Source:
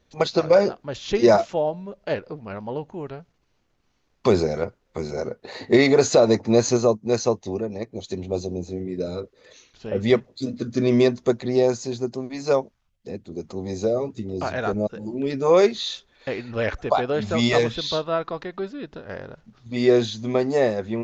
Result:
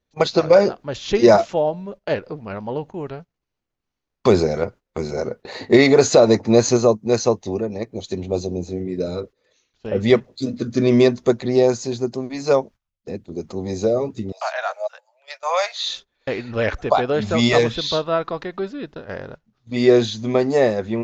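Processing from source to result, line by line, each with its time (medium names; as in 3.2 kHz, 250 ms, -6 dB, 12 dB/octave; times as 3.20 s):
14.32–15.86 s: steep high-pass 590 Hz 72 dB/octave
whole clip: gate -40 dBFS, range -17 dB; trim +3.5 dB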